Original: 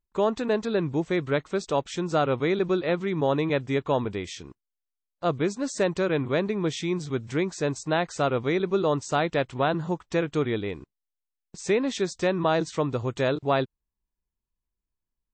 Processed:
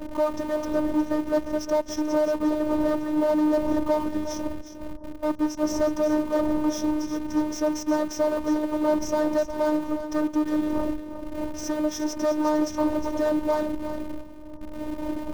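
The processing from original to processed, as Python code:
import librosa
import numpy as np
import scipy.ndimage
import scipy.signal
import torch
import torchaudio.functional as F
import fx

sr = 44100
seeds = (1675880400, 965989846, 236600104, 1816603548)

p1 = fx.dmg_wind(x, sr, seeds[0], corner_hz=350.0, level_db=-37.0)
p2 = fx.ripple_eq(p1, sr, per_octave=1.2, db=18)
p3 = 10.0 ** (-21.0 / 20.0) * np.tanh(p2 / 10.0 ** (-21.0 / 20.0))
p4 = scipy.signal.sosfilt(scipy.signal.cheby1(2, 1.0, [1200.0, 5200.0], 'bandstop', fs=sr, output='sos'), p3)
p5 = fx.hum_notches(p4, sr, base_hz=50, count=3)
p6 = fx.schmitt(p5, sr, flips_db=-36.5)
p7 = p5 + (p6 * 10.0 ** (-10.0 / 20.0))
p8 = fx.peak_eq(p7, sr, hz=6500.0, db=-4.5, octaves=1.7)
p9 = p8 + 10.0 ** (-10.5 / 20.0) * np.pad(p8, (int(359 * sr / 1000.0), 0))[:len(p8)]
p10 = fx.robotise(p9, sr, hz=305.0)
y = p10 * 10.0 ** (3.0 / 20.0)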